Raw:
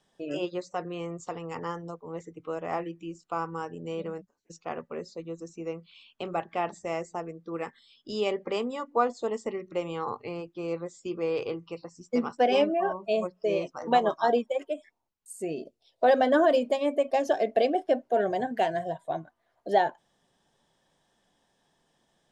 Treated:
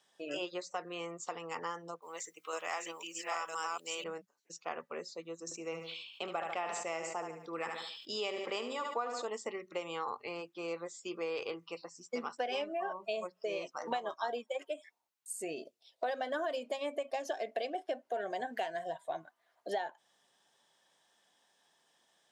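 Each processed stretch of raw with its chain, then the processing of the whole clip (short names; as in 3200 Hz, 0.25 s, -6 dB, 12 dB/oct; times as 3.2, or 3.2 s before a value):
2.02–4.04 reverse delay 0.509 s, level -1 dB + HPF 140 Hz + tilt +4.5 dB/oct
5.44–9.25 feedback echo 73 ms, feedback 41%, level -10.5 dB + sustainer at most 58 dB/s
whole clip: HPF 1100 Hz 6 dB/oct; compressor 5:1, threshold -36 dBFS; gain +2.5 dB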